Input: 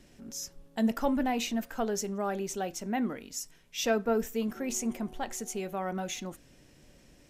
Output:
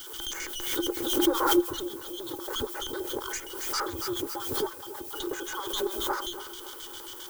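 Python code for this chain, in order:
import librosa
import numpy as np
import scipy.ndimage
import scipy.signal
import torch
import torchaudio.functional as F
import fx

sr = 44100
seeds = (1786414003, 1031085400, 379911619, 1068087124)

p1 = fx.band_shuffle(x, sr, order='2413')
p2 = fx.env_lowpass_down(p1, sr, base_hz=530.0, full_db=-29.5)
p3 = fx.high_shelf(p2, sr, hz=9100.0, db=9.0)
p4 = fx.rider(p3, sr, range_db=3, speed_s=2.0)
p5 = p3 + F.gain(torch.from_numpy(p4), -1.5).numpy()
p6 = fx.leveller(p5, sr, passes=5)
p7 = fx.filter_lfo_bandpass(p6, sr, shape='square', hz=7.5, low_hz=570.0, high_hz=3200.0, q=0.71)
p8 = fx.tube_stage(p7, sr, drive_db=14.0, bias=0.75)
p9 = fx.fixed_phaser(p8, sr, hz=700.0, stages=6)
p10 = fx.dmg_noise_colour(p9, sr, seeds[0], colour='violet', level_db=-50.0)
p11 = fx.small_body(p10, sr, hz=(350.0, 820.0, 1500.0, 2500.0), ring_ms=90, db=13)
p12 = p11 + fx.echo_feedback(p11, sr, ms=279, feedback_pct=51, wet_db=-14, dry=0)
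p13 = fx.pre_swell(p12, sr, db_per_s=45.0)
y = F.gain(torch.from_numpy(p13), 3.5).numpy()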